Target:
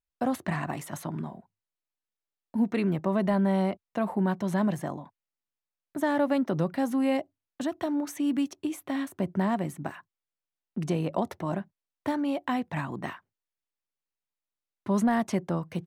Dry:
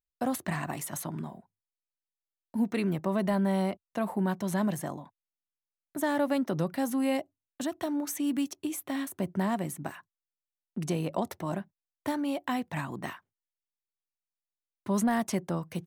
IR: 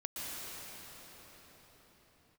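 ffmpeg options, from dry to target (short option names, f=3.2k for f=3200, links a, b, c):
-af "lowpass=f=3.1k:p=1,volume=2.5dB"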